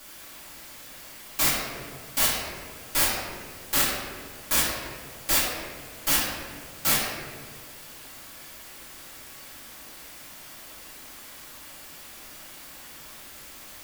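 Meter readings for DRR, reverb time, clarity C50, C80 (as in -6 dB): -10.0 dB, 1.8 s, 0.0 dB, 2.0 dB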